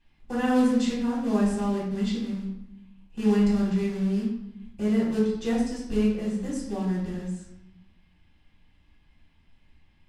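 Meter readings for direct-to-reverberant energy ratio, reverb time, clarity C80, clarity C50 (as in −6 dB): −7.5 dB, 0.85 s, 6.0 dB, 2.5 dB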